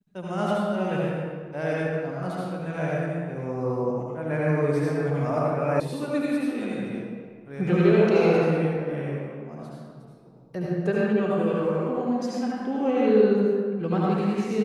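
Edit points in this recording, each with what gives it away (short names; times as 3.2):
5.8 sound cut off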